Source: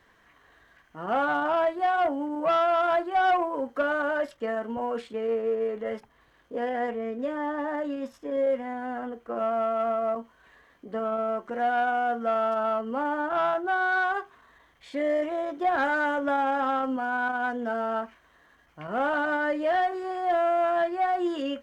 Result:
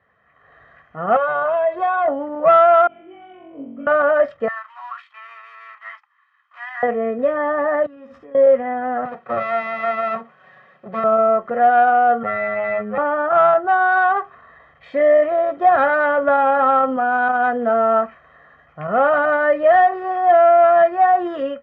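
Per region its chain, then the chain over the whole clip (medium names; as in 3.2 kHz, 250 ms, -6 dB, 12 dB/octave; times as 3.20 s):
1.16–2.08 s: bass shelf 88 Hz -10.5 dB + comb 1.9 ms, depth 84% + compression 10:1, threshold -26 dBFS
2.87–3.87 s: compression, threshold -29 dBFS + cascade formant filter i + flutter echo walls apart 3.7 m, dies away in 0.92 s
4.48–6.83 s: companding laws mixed up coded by A + elliptic high-pass 1 kHz, stop band 50 dB
7.86–8.35 s: peaking EQ 600 Hz -14 dB 0.23 oct + flutter echo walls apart 11.6 m, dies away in 0.32 s + compression 8:1, threshold -45 dBFS
9.05–11.04 s: comb filter that takes the minimum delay 5.4 ms + high-pass 120 Hz 24 dB/octave
12.23–12.98 s: comb filter that takes the minimum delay 0.35 ms + low-pass 2.4 kHz + robot voice 105 Hz
whole clip: Chebyshev band-pass 100–1700 Hz, order 2; comb 1.6 ms, depth 61%; level rider gain up to 13 dB; trim -2 dB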